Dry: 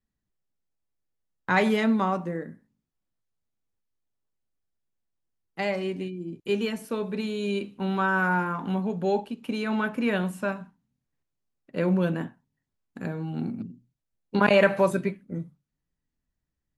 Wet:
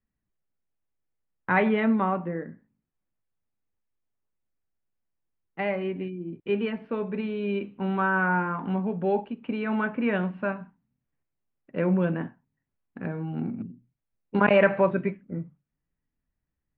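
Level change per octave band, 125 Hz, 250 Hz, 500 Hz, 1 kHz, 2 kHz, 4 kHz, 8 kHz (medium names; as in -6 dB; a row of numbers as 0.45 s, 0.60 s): 0.0 dB, 0.0 dB, 0.0 dB, 0.0 dB, -0.5 dB, -7.0 dB, under -30 dB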